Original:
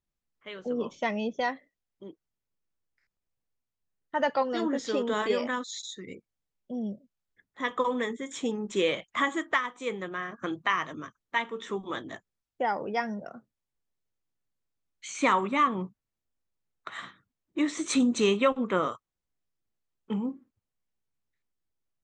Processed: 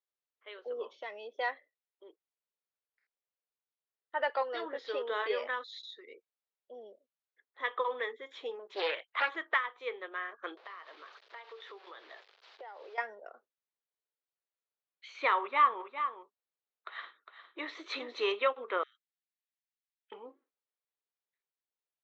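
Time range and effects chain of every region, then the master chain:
0.83–1.39 s: compression 2.5:1, threshold -35 dBFS + tone controls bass +6 dB, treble +6 dB + band-stop 2.4 kHz, Q 18
8.59–9.36 s: high-pass 140 Hz + bass shelf 230 Hz -5.5 dB + loudspeaker Doppler distortion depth 0.53 ms
10.57–12.98 s: one-bit delta coder 64 kbps, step -40 dBFS + high-pass 400 Hz + compression 8:1, threshold -38 dBFS
15.39–18.32 s: dynamic bell 970 Hz, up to +7 dB, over -41 dBFS, Q 2.5 + delay 407 ms -9 dB
18.83–20.12 s: steep high-pass 1.6 kHz 72 dB/octave + compression 10:1, threshold -56 dBFS
whole clip: elliptic band-pass 420–4200 Hz, stop band 40 dB; dynamic bell 1.9 kHz, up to +4 dB, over -41 dBFS, Q 1.1; trim -5.5 dB

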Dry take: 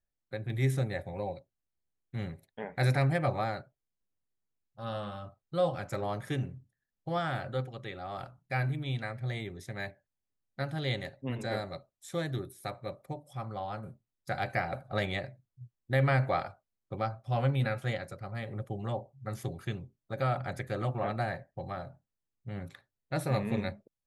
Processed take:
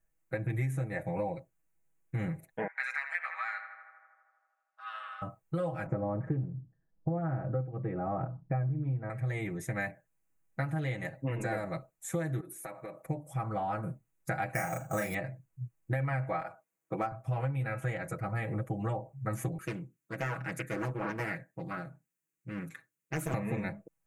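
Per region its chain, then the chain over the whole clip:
2.67–5.22 s: high-pass 1.4 kHz 24 dB/octave + distance through air 130 m + filtered feedback delay 80 ms, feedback 79%, low-pass 2.8 kHz, level -10.5 dB
5.86–9.10 s: low-pass 1.4 kHz + tilt shelf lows +7.5 dB, about 890 Hz
12.40–13.04 s: high-pass 250 Hz + compression 8:1, threshold -45 dBFS
14.54–15.14 s: sample-rate reducer 7.4 kHz + doubling 34 ms -2.5 dB
16.41–17.12 s: high-pass 200 Hz + hard clipper -23.5 dBFS
19.58–23.34 s: high-pass 210 Hz + peaking EQ 720 Hz -14.5 dB 1.3 oct + loudspeaker Doppler distortion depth 0.98 ms
whole clip: comb 6.2 ms, depth 96%; compression 10:1, threshold -35 dBFS; high-order bell 4.1 kHz -14 dB 1 oct; trim +5.5 dB

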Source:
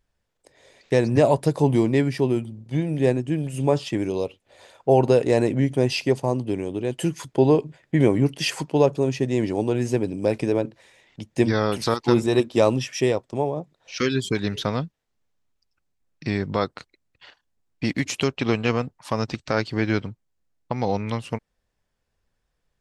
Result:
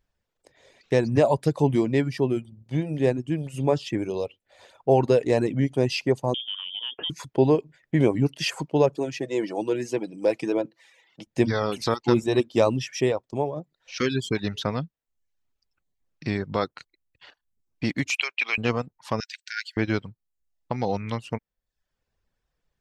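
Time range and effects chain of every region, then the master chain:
6.34–7.10 s: frequency inversion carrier 3.4 kHz + high-pass 150 Hz 6 dB/octave + compression 2.5:1, threshold -27 dBFS
8.97–11.27 s: high-pass 260 Hz + comb 6.1 ms, depth 41% + phaser 1.2 Hz, delay 2.4 ms, feedback 21%
18.10–18.58 s: high-pass 1.2 kHz + peaking EQ 2.4 kHz +14.5 dB 0.35 oct
19.20–19.77 s: brick-wall FIR high-pass 1.4 kHz + treble shelf 9.5 kHz +9 dB
whole clip: reverb removal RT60 0.55 s; peaking EQ 9.8 kHz -6 dB 0.56 oct; trim -1.5 dB

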